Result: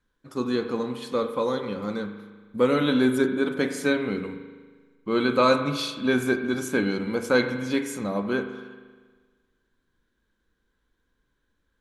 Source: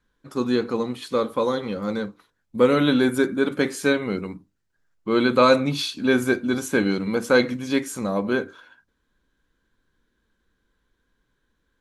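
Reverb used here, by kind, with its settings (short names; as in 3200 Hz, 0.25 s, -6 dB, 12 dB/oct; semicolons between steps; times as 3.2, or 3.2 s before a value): spring tank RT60 1.5 s, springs 39 ms, chirp 60 ms, DRR 7.5 dB; gain -3.5 dB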